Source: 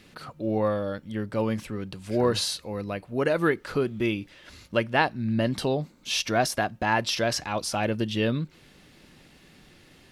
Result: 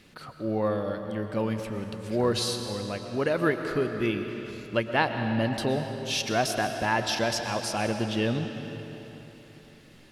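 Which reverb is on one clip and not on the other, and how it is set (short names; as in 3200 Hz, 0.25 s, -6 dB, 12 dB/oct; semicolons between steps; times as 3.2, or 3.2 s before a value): digital reverb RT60 3.5 s, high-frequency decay 0.85×, pre-delay 80 ms, DRR 6 dB; gain -2 dB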